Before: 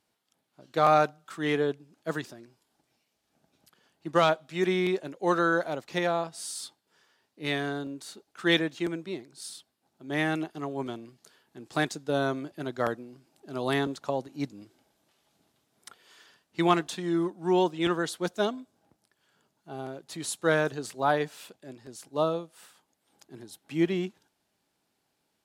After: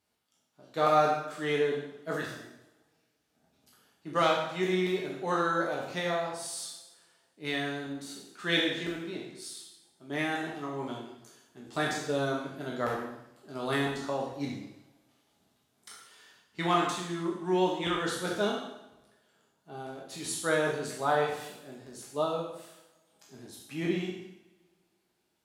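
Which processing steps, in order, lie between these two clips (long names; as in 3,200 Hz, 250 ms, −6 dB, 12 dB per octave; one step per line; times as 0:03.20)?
peak hold with a decay on every bin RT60 0.50 s
coupled-rooms reverb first 0.77 s, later 2.2 s, from −24 dB, DRR −0.5 dB
level −6 dB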